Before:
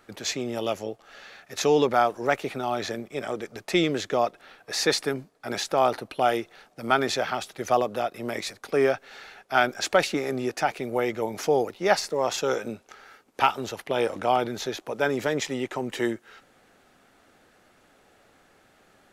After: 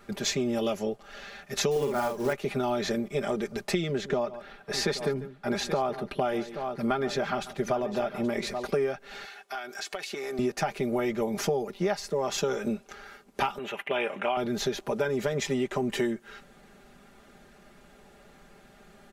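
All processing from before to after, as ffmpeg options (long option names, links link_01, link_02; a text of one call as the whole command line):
ffmpeg -i in.wav -filter_complex "[0:a]asettb=1/sr,asplit=3[link_01][link_02][link_03];[link_01]atrim=end=1.714[link_04];[link_02]atrim=start=1.71:end=2.33,asetpts=PTS-STARTPTS,afade=type=in:duration=0.004:curve=qsin,afade=type=out:start_time=0.616:duration=0.004:curve=qsin,equalizer=frequency=3700:width_type=o:width=0.29:gain=-10,acrusher=bits=4:mode=log:mix=0:aa=0.000001,asplit=2[link_05][link_06];[link_06]adelay=49,volume=-3.5dB[link_07];[link_05][link_07]amix=inputs=2:normalize=0,atrim=end_sample=27342[link_08];[link_03]atrim=start=2.326[link_09];[link_04][link_08]acrossfade=duration=0.004:curve1=hsin:curve2=qsin[link_10];[link_10][link_09]acrossfade=duration=0.004:curve1=qsin:curve2=hsin,asettb=1/sr,asplit=3[link_11][link_12][link_13];[link_11]atrim=end=3.914[link_14];[link_12]atrim=start=3.91:end=8.66,asetpts=PTS-STARTPTS,afade=type=in:duration=0.004:curve=qsin,afade=type=out:start_time=4.746:duration=0.004:curve=qsin,highshelf=frequency=3600:gain=-7,aecho=1:1:142|827:0.112|0.168,atrim=end_sample=209475[link_15];[link_13]atrim=start=8.656[link_16];[link_14][link_15]acrossfade=duration=0.004:curve1=hsin:curve2=qsin[link_17];[link_17][link_16]acrossfade=duration=0.004:curve1=qsin:curve2=hsin,asettb=1/sr,asplit=3[link_18][link_19][link_20];[link_18]atrim=end=9.254[link_21];[link_19]atrim=start=9.25:end=10.39,asetpts=PTS-STARTPTS,afade=type=in:duration=0.004:curve=qsin,afade=type=out:start_time=1.136:duration=0.004:curve=qsin,highpass=frequency=1000:poles=1,aecho=1:1:2.7:0.33,atrim=end_sample=50274,acompressor=threshold=-35dB:ratio=8:attack=3.2:release=140:knee=1:detection=peak[link_22];[link_20]atrim=start=10.386[link_23];[link_21][link_22]acrossfade=duration=0.004:curve1=hsin:curve2=qsin[link_24];[link_24][link_23]acrossfade=duration=0.004:curve1=qsin:curve2=hsin,asettb=1/sr,asplit=3[link_25][link_26][link_27];[link_25]atrim=end=13.584[link_28];[link_26]atrim=start=13.58:end=14.37,asetpts=PTS-STARTPTS,afade=type=in:duration=0.004:curve=qsin,afade=type=out:start_time=0.786:duration=0.004:curve=qsin,highpass=frequency=720:poles=1,highshelf=frequency=3600:width_type=q:width=3:gain=-10[link_29];[link_27]atrim=start=14.366[link_30];[link_28][link_29]acrossfade=duration=0.004:curve1=hsin:curve2=qsin[link_31];[link_31][link_30]acrossfade=duration=0.004:curve1=qsin:curve2=hsin,lowshelf=frequency=210:gain=11.5,aecho=1:1:5:0.78,acompressor=threshold=-24dB:ratio=12" out.wav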